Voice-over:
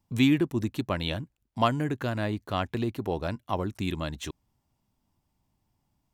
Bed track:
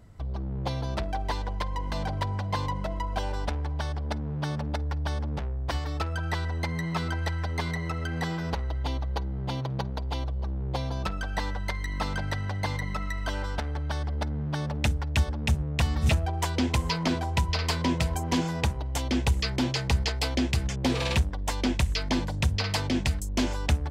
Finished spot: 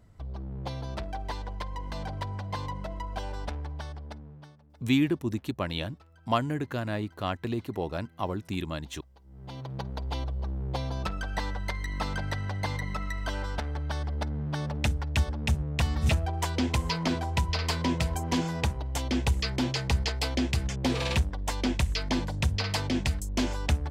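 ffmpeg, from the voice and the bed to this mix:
-filter_complex "[0:a]adelay=4700,volume=-2dB[a];[1:a]volume=21dB,afade=t=out:st=3.59:d=0.98:silence=0.0749894,afade=t=in:st=9.23:d=0.85:silence=0.0501187[b];[a][b]amix=inputs=2:normalize=0"

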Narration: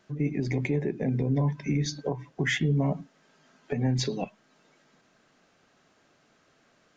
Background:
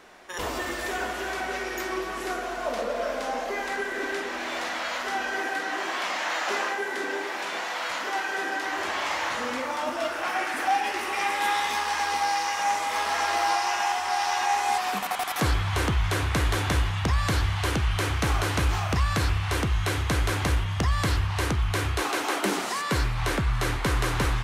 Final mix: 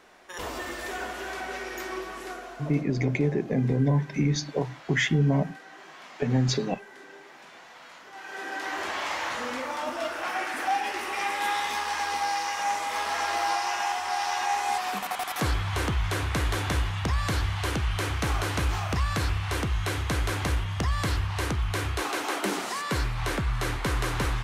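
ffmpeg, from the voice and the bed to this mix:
-filter_complex "[0:a]adelay=2500,volume=2.5dB[a];[1:a]volume=11dB,afade=t=out:st=1.96:d=0.91:silence=0.211349,afade=t=in:st=8.13:d=0.56:silence=0.177828[b];[a][b]amix=inputs=2:normalize=0"

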